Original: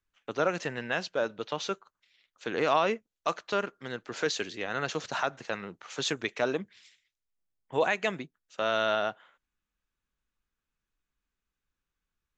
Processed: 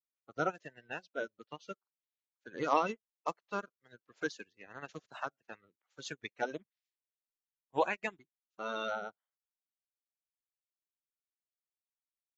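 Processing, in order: bin magnitudes rounded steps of 30 dB; upward expander 2.5:1, over -48 dBFS; gain -1 dB

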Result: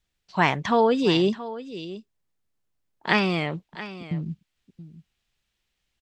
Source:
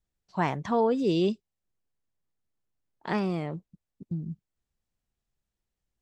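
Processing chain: bell 2900 Hz +10.5 dB 2.1 oct, from 1.17 s +2 dB, from 3.09 s +14.5 dB; echo 0.676 s -15 dB; gain +3.5 dB

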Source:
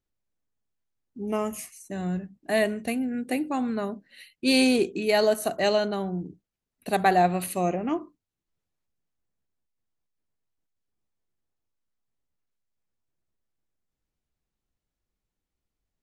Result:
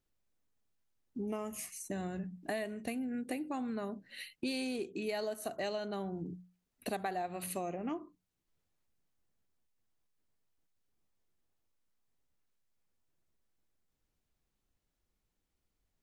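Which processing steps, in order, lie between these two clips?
notches 60/120/180 Hz; compressor 6:1, threshold -38 dBFS, peak gain reduction 20 dB; gain +2 dB

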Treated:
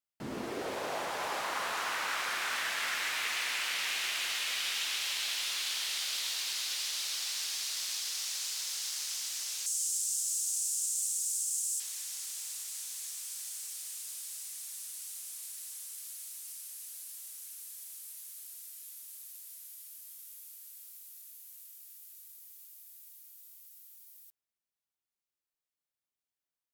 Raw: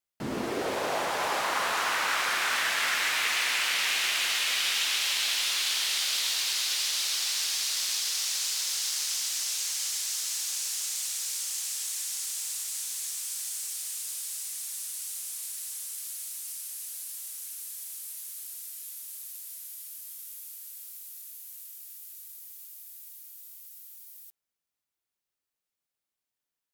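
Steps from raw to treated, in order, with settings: 9.66–11.8 graphic EQ 125/500/1000/2000/4000/8000 Hz -8/-6/-8/-12/-7/+11 dB; gain -6.5 dB

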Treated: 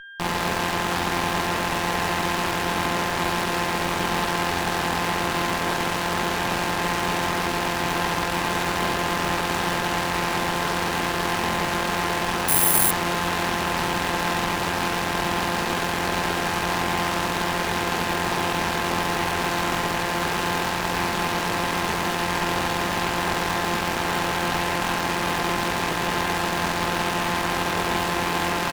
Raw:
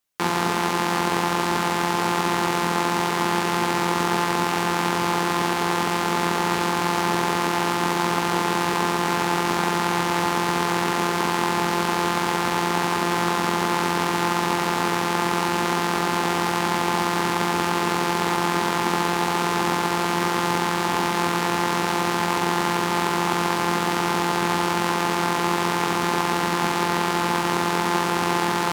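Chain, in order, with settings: reverse bouncing-ball echo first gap 50 ms, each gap 1.1×, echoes 5; whine 1600 Hz -32 dBFS; added harmonics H 8 -9 dB, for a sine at -5.5 dBFS; 12.48–12.91 careless resampling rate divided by 4×, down none, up zero stuff; gain -7.5 dB

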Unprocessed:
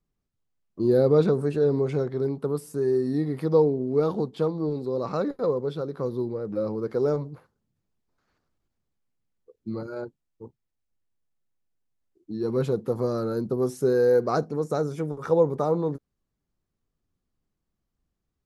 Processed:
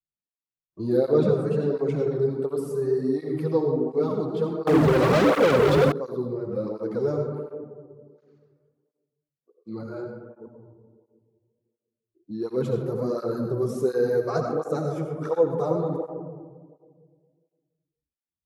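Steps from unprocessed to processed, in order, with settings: spectral noise reduction 20 dB; digital reverb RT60 1.8 s, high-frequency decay 0.25×, pre-delay 45 ms, DRR 3 dB; 4.67–5.92 sample leveller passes 5; tape flanging out of phase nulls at 1.4 Hz, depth 4.8 ms

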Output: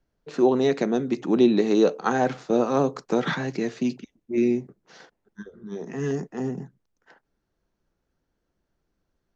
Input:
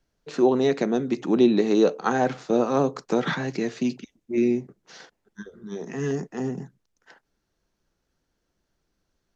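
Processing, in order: mismatched tape noise reduction decoder only

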